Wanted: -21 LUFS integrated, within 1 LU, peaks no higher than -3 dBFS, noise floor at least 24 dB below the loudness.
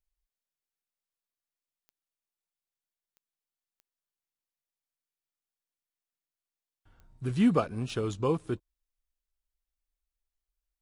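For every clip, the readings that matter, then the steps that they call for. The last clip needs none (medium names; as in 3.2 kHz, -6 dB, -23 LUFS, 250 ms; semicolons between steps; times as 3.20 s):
clicks found 5; loudness -30.0 LUFS; peak level -13.5 dBFS; loudness target -21.0 LUFS
-> de-click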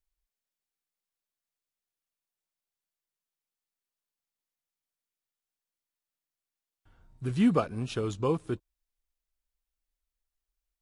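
clicks found 0; loudness -30.0 LUFS; peak level -13.5 dBFS; loudness target -21.0 LUFS
-> trim +9 dB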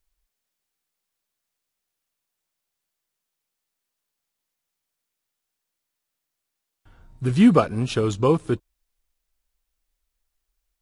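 loudness -21.0 LUFS; peak level -4.5 dBFS; noise floor -83 dBFS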